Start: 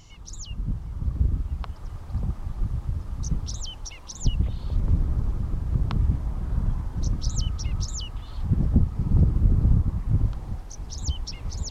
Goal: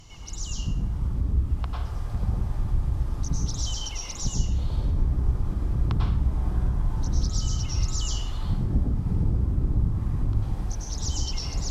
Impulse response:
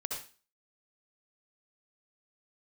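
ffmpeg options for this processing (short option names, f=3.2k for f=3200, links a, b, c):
-filter_complex "[0:a]acompressor=threshold=-26dB:ratio=3[a];[1:a]atrim=start_sample=2205,asetrate=29547,aresample=44100[b];[a][b]afir=irnorm=-1:irlink=0,volume=1dB"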